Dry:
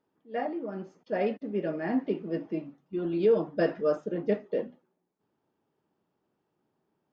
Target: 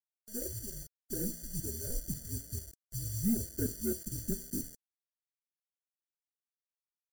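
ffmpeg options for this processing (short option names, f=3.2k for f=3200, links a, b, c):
-af "equalizer=f=4.5k:w=0.88:g=-6.5,adynamicsmooth=sensitivity=0.5:basefreq=520,afreqshift=-230,flanger=delay=6.2:depth=9:regen=-89:speed=0.35:shape=triangular,acrusher=bits=8:mix=0:aa=0.000001,aexciter=amount=11.3:drive=8.4:freq=4.6k,afftfilt=real='re*eq(mod(floor(b*sr/1024/700),2),0)':imag='im*eq(mod(floor(b*sr/1024/700),2),0)':win_size=1024:overlap=0.75,volume=-3dB"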